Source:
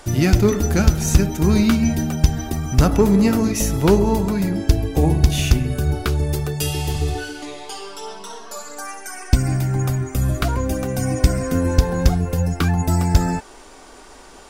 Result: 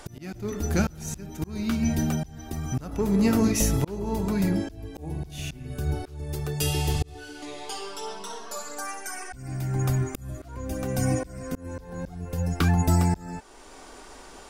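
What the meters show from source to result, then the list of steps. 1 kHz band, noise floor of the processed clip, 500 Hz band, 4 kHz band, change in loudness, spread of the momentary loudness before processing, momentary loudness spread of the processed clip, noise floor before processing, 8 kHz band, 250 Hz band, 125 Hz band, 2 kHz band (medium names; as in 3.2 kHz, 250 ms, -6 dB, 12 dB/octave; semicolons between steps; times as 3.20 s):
-7.5 dB, -46 dBFS, -10.0 dB, -8.0 dB, -9.0 dB, 16 LU, 16 LU, -43 dBFS, -6.0 dB, -8.0 dB, -9.0 dB, -7.5 dB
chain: slow attack 649 ms; trim -2.5 dB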